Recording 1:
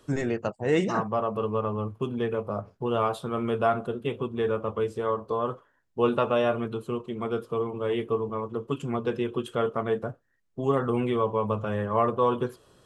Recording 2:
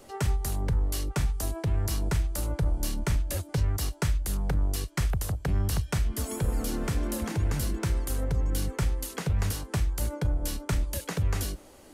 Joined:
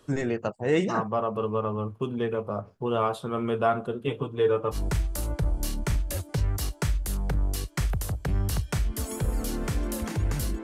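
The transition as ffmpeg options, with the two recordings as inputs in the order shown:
ffmpeg -i cue0.wav -i cue1.wav -filter_complex "[0:a]asettb=1/sr,asplit=3[link_01][link_02][link_03];[link_01]atrim=end=4.074[link_04];[link_02]atrim=start=4.07:end=4.77,asetpts=PTS-STARTPTS,afade=type=in:duration=0.004:curve=qsin,afade=type=out:start_time=0.696:duration=0.004:curve=qsin,aecho=1:1:6.7:0.71,atrim=end_sample=30870[link_05];[link_03]atrim=start=4.766[link_06];[link_04][link_05]acrossfade=duration=0.004:curve1=hsin:curve2=qsin[link_07];[link_07][link_06]acrossfade=duration=0.004:curve1=qsin:curve2=hsin,apad=whole_dur=10.63,atrim=end=10.63,atrim=end=4.77,asetpts=PTS-STARTPTS[link_08];[1:a]atrim=start=1.91:end=7.83,asetpts=PTS-STARTPTS[link_09];[link_08][link_09]acrossfade=duration=0.06:curve1=tri:curve2=tri" out.wav

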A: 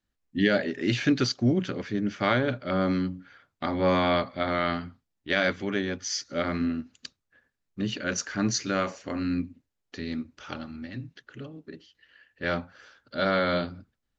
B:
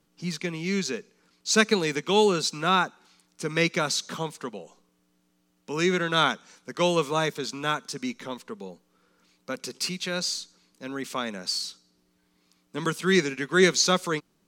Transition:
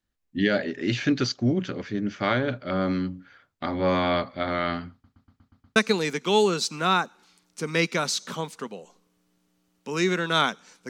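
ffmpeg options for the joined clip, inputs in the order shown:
ffmpeg -i cue0.wav -i cue1.wav -filter_complex "[0:a]apad=whole_dur=10.89,atrim=end=10.89,asplit=7[link_01][link_02][link_03][link_04][link_05][link_06][link_07];[link_01]atrim=end=5.042[link_08];[link_02]atrim=start=4.918:end=5.042[link_09];[link_03]atrim=start=4.918:end=5.042[link_10];[link_04]atrim=start=4.918:end=5.042[link_11];[link_05]atrim=start=4.918:end=5.042[link_12];[link_06]atrim=start=4.918:end=5.042[link_13];[link_07]atrim=start=4.918:end=5.042[link_14];[1:a]atrim=start=1.578:end=6.71[link_15];[link_08][link_09]acrossfade=duration=0.004:curve1=hsin:curve2=hsin[link_16];[link_16][link_10]acrossfade=duration=0.004:curve1=hsin:curve2=hsin[link_17];[link_17][link_11]acrossfade=duration=0.004:curve1=hsin:curve2=hsin[link_18];[link_18][link_12]acrossfade=duration=0.004:curve1=hsin:curve2=hsin[link_19];[link_19][link_13]acrossfade=duration=0.004:curve1=hsin:curve2=hsin[link_20];[link_20][link_14]acrossfade=duration=0.004:curve1=hsin:curve2=hsin[link_21];[link_21][link_15]acrossfade=duration=0.004:curve1=hsin:curve2=hsin" out.wav

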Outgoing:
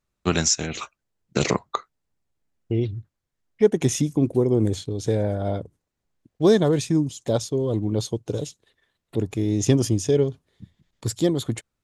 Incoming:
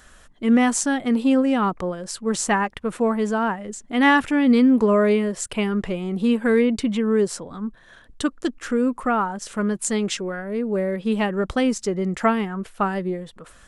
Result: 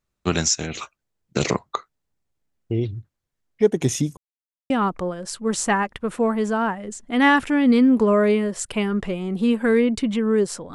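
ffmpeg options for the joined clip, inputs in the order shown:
ffmpeg -i cue0.wav -i cue1.wav -filter_complex "[0:a]apad=whole_dur=10.74,atrim=end=10.74,asplit=2[link_01][link_02];[link_01]atrim=end=4.17,asetpts=PTS-STARTPTS,afade=type=out:start_time=4.166:duration=0.004:curve=hsin[link_03];[link_02]atrim=start=4.17:end=4.7,asetpts=PTS-STARTPTS,volume=0[link_04];[1:a]atrim=start=1.51:end=7.55,asetpts=PTS-STARTPTS,afade=type=in:duration=0.004:curve=hsin[link_05];[link_03][link_04][link_05]concat=n=3:v=0:a=1" out.wav

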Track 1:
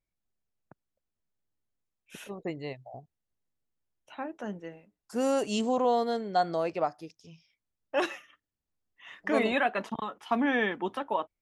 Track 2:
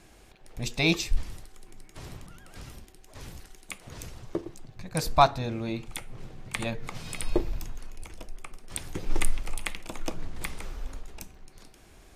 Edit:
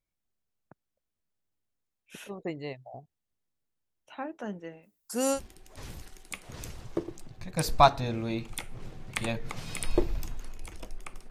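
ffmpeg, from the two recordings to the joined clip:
ffmpeg -i cue0.wav -i cue1.wav -filter_complex "[0:a]asplit=3[link_01][link_02][link_03];[link_01]afade=type=out:start_time=4.82:duration=0.02[link_04];[link_02]aemphasis=mode=production:type=75fm,afade=type=in:start_time=4.82:duration=0.02,afade=type=out:start_time=5.4:duration=0.02[link_05];[link_03]afade=type=in:start_time=5.4:duration=0.02[link_06];[link_04][link_05][link_06]amix=inputs=3:normalize=0,apad=whole_dur=11.3,atrim=end=11.3,atrim=end=5.4,asetpts=PTS-STARTPTS[link_07];[1:a]atrim=start=2.7:end=8.68,asetpts=PTS-STARTPTS[link_08];[link_07][link_08]acrossfade=duration=0.08:curve1=tri:curve2=tri" out.wav

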